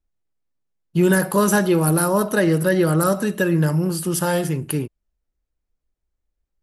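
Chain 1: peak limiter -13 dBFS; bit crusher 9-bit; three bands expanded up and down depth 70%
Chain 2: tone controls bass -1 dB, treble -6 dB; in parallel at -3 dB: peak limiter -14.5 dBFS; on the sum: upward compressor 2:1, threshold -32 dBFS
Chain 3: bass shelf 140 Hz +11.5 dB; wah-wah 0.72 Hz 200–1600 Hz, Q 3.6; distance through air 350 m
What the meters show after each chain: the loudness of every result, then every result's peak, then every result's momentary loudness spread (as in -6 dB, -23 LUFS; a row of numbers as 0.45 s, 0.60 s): -22.5 LUFS, -17.0 LUFS, -26.0 LUFS; -9.0 dBFS, -4.5 dBFS, -9.0 dBFS; 5 LU, 6 LU, 18 LU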